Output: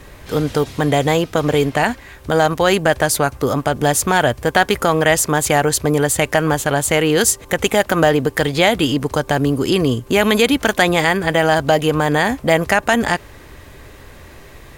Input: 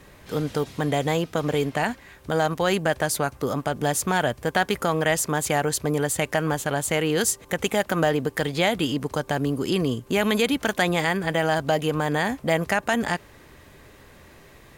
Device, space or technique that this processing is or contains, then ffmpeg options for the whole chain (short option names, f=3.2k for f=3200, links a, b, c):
low shelf boost with a cut just above: -af "lowshelf=f=80:g=7.5,equalizer=f=180:t=o:w=0.58:g=-4.5,volume=8dB"